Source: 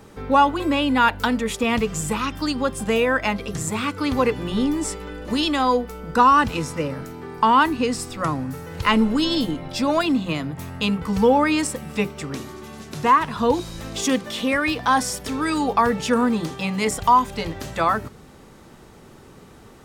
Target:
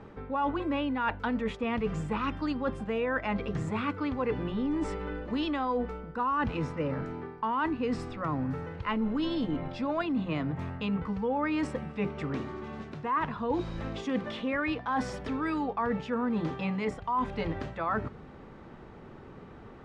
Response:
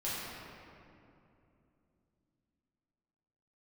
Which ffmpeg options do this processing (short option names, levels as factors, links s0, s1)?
-af "lowpass=2200,areverse,acompressor=threshold=0.0501:ratio=6,areverse,volume=0.841"